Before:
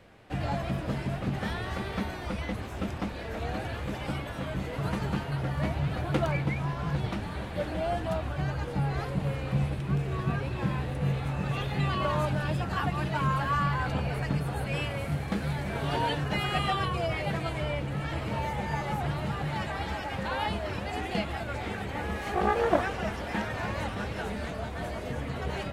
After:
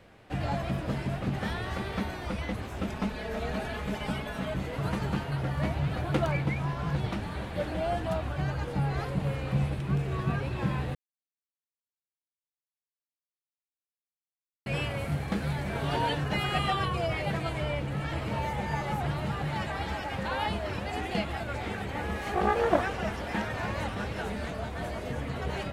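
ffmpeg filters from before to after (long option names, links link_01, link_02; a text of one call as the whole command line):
ffmpeg -i in.wav -filter_complex "[0:a]asettb=1/sr,asplit=3[link_01][link_02][link_03];[link_01]atrim=end=2.894[link_04];[link_02]atrim=start=2.89:end=4.54,asetpts=PTS-STARTPTS,afade=type=in:duration=0.004:curve=qsin,afade=type=out:start_time=1.646:duration=0.004:curve=qsin,aecho=1:1:4.7:0.65,atrim=end_sample=72765[link_05];[link_03]atrim=start=4.536[link_06];[link_04][link_05]acrossfade=duration=0.004:curve1=hsin:curve2=qsin[link_07];[link_07][link_06]acrossfade=duration=0.004:curve1=qsin:curve2=hsin,asplit=3[link_08][link_09][link_10];[link_08]atrim=end=10.95,asetpts=PTS-STARTPTS,afade=type=out:start_time=10.946:duration=0.004:curve=hsin[link_11];[link_09]atrim=start=10.95:end=14.66,asetpts=PTS-STARTPTS,volume=0[link_12];[link_10]atrim=start=14.66,asetpts=PTS-STARTPTS,afade=type=in:duration=0.004:curve=hsin[link_13];[link_11][link_12][link_13]concat=n=3:v=0:a=1" out.wav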